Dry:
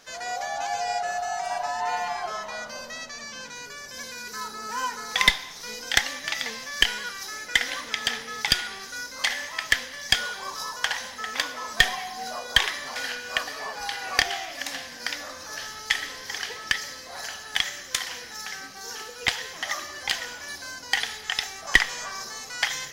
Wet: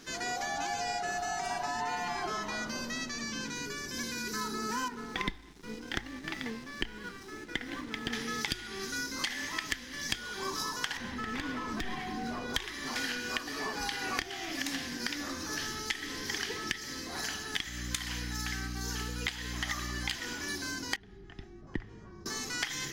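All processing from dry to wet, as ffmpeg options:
-filter_complex "[0:a]asettb=1/sr,asplit=3[a][b][c];[a]atrim=end=4.884[d];[b]atrim=start=4.88:end=8.13,asetpts=PTS-STARTPTS,afade=t=in:d=0.004:c=qsin,afade=t=out:st=3.246:d=0.004:c=qsin,lowpass=f=1k:p=1,aeval=exprs='sgn(val(0))*max(abs(val(0))-0.00335,0)':c=same[e];[c]atrim=start=8.126[f];[d][e]acrossfade=d=0.004:c1=hsin:c2=qsin[g];[g][f]acrossfade=d=0.004:c1=qsin:c2=hsin,asettb=1/sr,asplit=3[h][i][j];[h]atrim=end=10.974[k];[i]atrim=start=10.97:end=12.54,asetpts=PTS-STARTPTS,afade=t=in:d=0.004:c=qsin,afade=t=out:st=1.566:d=0.004:c=qsin,bass=f=250:g=6,treble=f=4k:g=-13,acompressor=threshold=-32dB:ratio=3:attack=3.2:release=140:knee=1:detection=peak,aeval=exprs='clip(val(0),-1,0.0188)':c=same[l];[j]atrim=start=12.536[m];[k][l]acrossfade=d=0.004:c1=hsin:c2=qsin[n];[n][m]acrossfade=d=0.004:c1=qsin:c2=hsin,asettb=1/sr,asplit=3[o][p][q];[o]atrim=end=17.664[r];[p]atrim=start=17.66:end=20.15,asetpts=PTS-STARTPTS,afade=t=in:d=0.004:c=qsin,afade=t=out:st=2.486:d=0.004:c=qsin,highpass=590,bandreject=f=5.6k:w=14,aeval=exprs='val(0)+0.00562*(sin(2*PI*60*n/s)+sin(2*PI*2*60*n/s)/2+sin(2*PI*3*60*n/s)/3+sin(2*PI*4*60*n/s)/4+sin(2*PI*5*60*n/s)/5)':c=same[s];[q]atrim=start=20.146[t];[r][s]acrossfade=d=0.004:c1=hsin:c2=qsin[u];[u][t]acrossfade=d=0.004:c1=qsin:c2=hsin,asettb=1/sr,asplit=3[v][w][x];[v]atrim=end=20.964[y];[w]atrim=start=20.96:end=22.26,asetpts=PTS-STARTPTS,afade=t=in:d=0.004:c=qsin,afade=t=out:st=1.296:d=0.004:c=qsin,bandpass=f=100:t=q:w=0.93,afreqshift=-38[z];[x]atrim=start=22.256[aa];[y][z]acrossfade=d=0.004:c1=hsin:c2=qsin[ab];[ab][aa]acrossfade=d=0.004:c1=qsin:c2=hsin,lowshelf=f=440:t=q:w=3:g=8,bandreject=f=53.5:t=h:w=4,bandreject=f=107:t=h:w=4,acompressor=threshold=-30dB:ratio=16"

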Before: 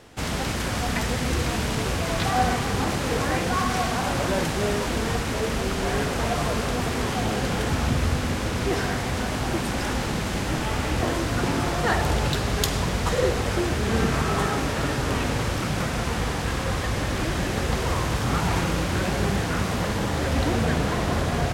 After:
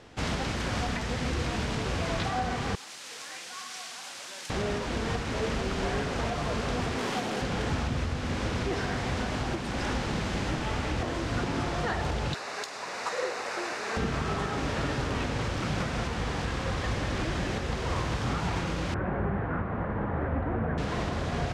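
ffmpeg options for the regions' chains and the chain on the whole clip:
-filter_complex "[0:a]asettb=1/sr,asplit=3[a][b][c];[a]atrim=end=2.754[d];[b]atrim=start=2.75:end=4.5,asetpts=PTS-STARTPTS,afade=t=in:d=0.004:c=qsin,afade=t=out:st=1.746:d=0.004:c=qsin,highpass=110,aderivative[e];[c]atrim=start=4.496[f];[d][e]acrossfade=d=0.004:c1=hsin:c2=qsin[g];[g][f]acrossfade=d=0.004:c1=qsin:c2=hsin,asettb=1/sr,asplit=3[h][i][j];[h]atrim=end=6.984[k];[i]atrim=start=6.98:end=7.42,asetpts=PTS-STARTPTS,afade=t=in:d=0.004:c=qsin,afade=t=out:st=0.436:d=0.004:c=qsin,highpass=190,acrusher=bits=6:dc=4:mix=0:aa=0.000001[l];[j]atrim=start=7.416[m];[k][l]acrossfade=d=0.004:c1=hsin:c2=qsin[n];[n][m]acrossfade=d=0.004:c1=qsin:c2=hsin,asettb=1/sr,asplit=3[o][p][q];[o]atrim=end=12.344[r];[p]atrim=start=12.34:end=13.97,asetpts=PTS-STARTPTS,afade=t=in:d=0.004:c=qsin,afade=t=out:st=1.626:d=0.004:c=qsin,highpass=620,equalizer=f=3.2k:t=o:w=0.22:g=-12[s];[q]atrim=start=13.966[t];[r][s]acrossfade=d=0.004:c1=hsin:c2=qsin[u];[u][t]acrossfade=d=0.004:c1=qsin:c2=hsin,asettb=1/sr,asplit=3[v][w][x];[v]atrim=end=18.944[y];[w]atrim=start=18.94:end=20.78,asetpts=PTS-STARTPTS,afade=t=in:d=0.004:c=qsin,afade=t=out:st=1.836:d=0.004:c=qsin,lowpass=f=1.7k:w=0.5412,lowpass=f=1.7k:w=1.3066,bandreject=f=60:t=h:w=6,bandreject=f=120:t=h:w=6,bandreject=f=180:t=h:w=6,bandreject=f=240:t=h:w=6,bandreject=f=300:t=h:w=6,bandreject=f=360:t=h:w=6,bandreject=f=420:t=h:w=6,bandreject=f=480:t=h:w=6,bandreject=f=540:t=h:w=6[z];[x]atrim=start=20.776[aa];[y][z]acrossfade=d=0.004:c1=hsin:c2=qsin[ab];[ab][aa]acrossfade=d=0.004:c1=qsin:c2=hsin,lowpass=6.3k,alimiter=limit=-18dB:level=0:latency=1:release=420,volume=-2dB"

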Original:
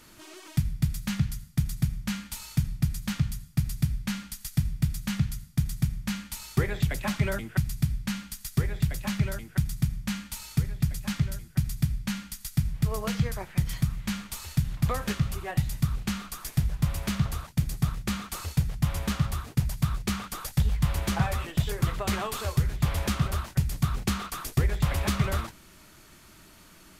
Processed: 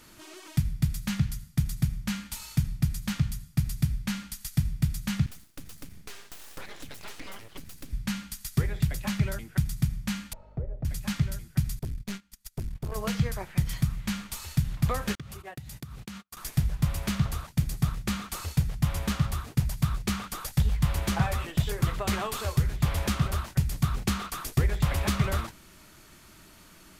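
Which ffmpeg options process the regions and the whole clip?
-filter_complex "[0:a]asettb=1/sr,asplit=3[a][b][c];[a]atrim=end=5.264[d];[b]atrim=start=5.26:end=7.93,asetpts=PTS-STARTPTS,afade=t=in:d=0.004:c=qsin,afade=t=out:st=2.666:d=0.004:c=qsin,lowshelf=f=270:g=-11.5,aeval=exprs='abs(val(0))':c=same,acompressor=threshold=-40dB:ratio=2:attack=3.2:release=140:knee=1:detection=peak[e];[c]atrim=start=7.926[f];[d][e]acrossfade=d=0.004:c1=hsin:c2=qsin[g];[g][f]acrossfade=d=0.004:c1=qsin:c2=hsin,asettb=1/sr,asplit=3[h][i][j];[h]atrim=end=10.334[k];[i]atrim=start=10.33:end=10.85,asetpts=PTS-STARTPTS,afade=t=in:d=0.004:c=qsin,afade=t=out:st=0.516:d=0.004:c=qsin,lowpass=f=570:t=q:w=6.7,equalizer=f=170:t=o:w=1.9:g=-12,aeval=exprs='val(0)+0.00178*(sin(2*PI*50*n/s)+sin(2*PI*2*50*n/s)/2+sin(2*PI*3*50*n/s)/3+sin(2*PI*4*50*n/s)/4+sin(2*PI*5*50*n/s)/5)':c=same[l];[j]atrim=start=10.846[m];[k][l]acrossfade=d=0.004:c1=hsin:c2=qsin[n];[n][m]acrossfade=d=0.004:c1=qsin:c2=hsin,asettb=1/sr,asplit=3[o][p][q];[o]atrim=end=11.794[r];[p]atrim=start=11.79:end=12.96,asetpts=PTS-STARTPTS,afade=t=in:d=0.004:c=qsin,afade=t=out:st=1.166:d=0.004:c=qsin,agate=range=-20dB:threshold=-35dB:ratio=16:release=100:detection=peak,aeval=exprs='(tanh(28.2*val(0)+0.6)-tanh(0.6))/28.2':c=same[s];[q]atrim=start=12.956[t];[r][s]acrossfade=d=0.004:c1=hsin:c2=qsin[u];[u][t]acrossfade=d=0.004:c1=qsin:c2=hsin,asettb=1/sr,asplit=3[v][w][x];[v]atrim=end=15.154[y];[w]atrim=start=15.15:end=16.37,asetpts=PTS-STARTPTS,afade=t=in:d=0.004:c=qsin,afade=t=out:st=1.216:d=0.004:c=qsin,agate=range=-47dB:threshold=-36dB:ratio=16:release=100:detection=peak,highpass=77,acompressor=threshold=-37dB:ratio=6:attack=3.2:release=140:knee=1:detection=peak[z];[x]atrim=start=16.366[aa];[y][z]acrossfade=d=0.004:c1=hsin:c2=qsin[ab];[ab][aa]acrossfade=d=0.004:c1=qsin:c2=hsin"

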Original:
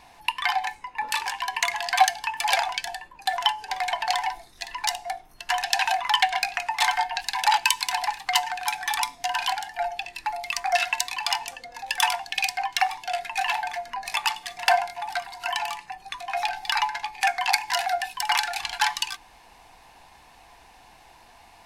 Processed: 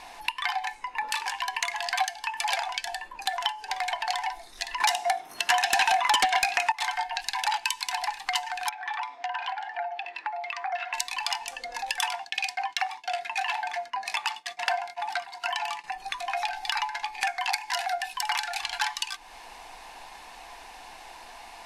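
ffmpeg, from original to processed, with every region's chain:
-filter_complex "[0:a]asettb=1/sr,asplit=3[a][b][c];[a]atrim=end=4.804[d];[b]atrim=start=4.8:end=6.72,asetpts=PTS-STARTPTS,afade=t=in:d=0.004:c=qsin,afade=t=out:st=1.916:d=0.004:c=qsin,highpass=130,bandreject=f=4.6k:w=17,aeval=exprs='0.75*sin(PI/2*3.98*val(0)/0.75)':c=same[e];[c]atrim=start=6.716[f];[d][e]acrossfade=d=0.004:c1=hsin:c2=qsin[g];[g][f]acrossfade=d=0.004:c1=qsin:c2=hsin,asettb=1/sr,asplit=3[h][i][j];[h]atrim=end=8.694[k];[i]atrim=start=8.69:end=10.94,asetpts=PTS-STARTPTS,afade=t=in:d=0.004:c=qsin,afade=t=out:st=2.246:d=0.004:c=qsin,highpass=430,lowpass=2k,acompressor=threshold=-37dB:ratio=1.5:attack=3.2:release=140:knee=1:detection=peak[l];[j]atrim=start=10.936[m];[k][l]acrossfade=d=0.004:c1=hsin:c2=qsin[n];[n][m]acrossfade=d=0.004:c1=qsin:c2=hsin,asettb=1/sr,asplit=3[o][p][q];[o]atrim=end=12.084[r];[p]atrim=start=12.08:end=15.84,asetpts=PTS-STARTPTS,afade=t=in:d=0.004:c=qsin,afade=t=out:st=3.756:d=0.004:c=qsin,agate=range=-33dB:threshold=-36dB:ratio=3:release=100:detection=peak,highpass=75,equalizer=f=13k:t=o:w=1.3:g=-6[s];[q]atrim=start=15.836[t];[r][s]acrossfade=d=0.004:c1=hsin:c2=qsin[u];[u][t]acrossfade=d=0.004:c1=qsin:c2=hsin,lowpass=12k,equalizer=f=100:w=0.65:g=-15,acompressor=threshold=-39dB:ratio=2.5,volume=7.5dB"

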